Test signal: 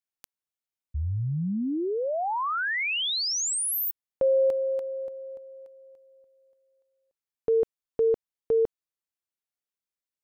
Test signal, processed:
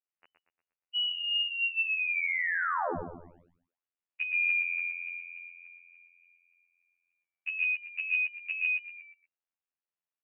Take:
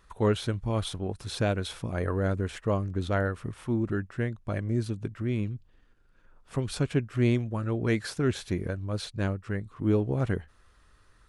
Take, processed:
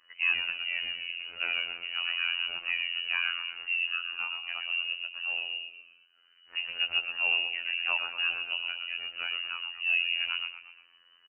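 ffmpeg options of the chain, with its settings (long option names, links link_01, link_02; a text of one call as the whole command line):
ffmpeg -i in.wav -filter_complex "[0:a]lowpass=frequency=2600:width_type=q:width=0.5098,lowpass=frequency=2600:width_type=q:width=0.6013,lowpass=frequency=2600:width_type=q:width=0.9,lowpass=frequency=2600:width_type=q:width=2.563,afreqshift=-3000,asplit=6[link_01][link_02][link_03][link_04][link_05][link_06];[link_02]adelay=118,afreqshift=-52,volume=-6.5dB[link_07];[link_03]adelay=236,afreqshift=-104,volume=-14dB[link_08];[link_04]adelay=354,afreqshift=-156,volume=-21.6dB[link_09];[link_05]adelay=472,afreqshift=-208,volume=-29.1dB[link_10];[link_06]adelay=590,afreqshift=-260,volume=-36.6dB[link_11];[link_01][link_07][link_08][link_09][link_10][link_11]amix=inputs=6:normalize=0,afftfilt=real='hypot(re,im)*cos(PI*b)':imag='0':win_size=2048:overlap=0.75" out.wav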